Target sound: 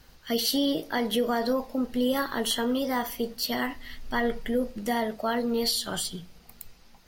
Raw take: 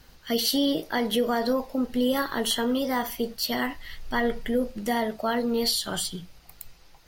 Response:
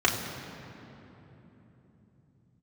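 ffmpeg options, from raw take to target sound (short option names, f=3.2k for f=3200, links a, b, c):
-filter_complex "[0:a]asplit=2[a][b];[1:a]atrim=start_sample=2205,asetrate=70560,aresample=44100[c];[b][c]afir=irnorm=-1:irlink=0,volume=-36.5dB[d];[a][d]amix=inputs=2:normalize=0,volume=-1.5dB"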